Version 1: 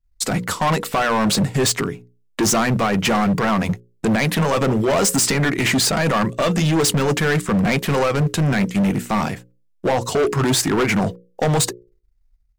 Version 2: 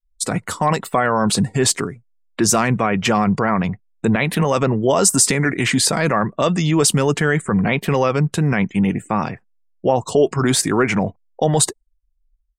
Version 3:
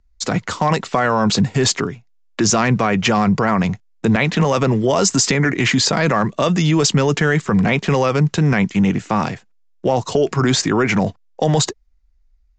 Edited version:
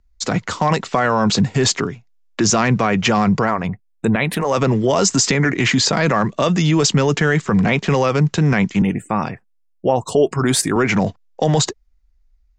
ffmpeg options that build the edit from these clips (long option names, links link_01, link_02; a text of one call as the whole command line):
ffmpeg -i take0.wav -i take1.wav -i take2.wav -filter_complex "[1:a]asplit=2[link_01][link_02];[2:a]asplit=3[link_03][link_04][link_05];[link_03]atrim=end=3.67[link_06];[link_01]atrim=start=3.43:end=4.59[link_07];[link_04]atrim=start=4.35:end=8.822[link_08];[link_02]atrim=start=8.818:end=10.762[link_09];[link_05]atrim=start=10.758[link_10];[link_06][link_07]acrossfade=duration=0.24:curve1=tri:curve2=tri[link_11];[link_11][link_08]acrossfade=duration=0.24:curve1=tri:curve2=tri[link_12];[link_12][link_09]acrossfade=duration=0.004:curve1=hsin:curve2=hsin[link_13];[link_13][link_10]acrossfade=duration=0.004:curve1=hsin:curve2=hsin" out.wav